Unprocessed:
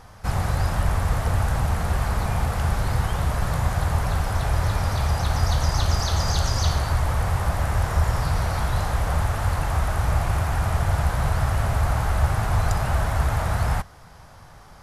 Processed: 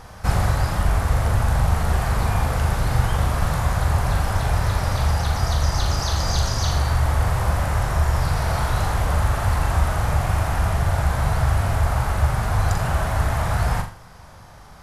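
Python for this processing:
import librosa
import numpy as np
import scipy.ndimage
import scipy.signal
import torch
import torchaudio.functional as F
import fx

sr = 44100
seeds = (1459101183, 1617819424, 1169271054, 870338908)

p1 = fx.rider(x, sr, range_db=10, speed_s=0.5)
p2 = p1 + fx.room_flutter(p1, sr, wall_m=7.1, rt60_s=0.4, dry=0)
y = F.gain(torch.from_numpy(p2), 1.0).numpy()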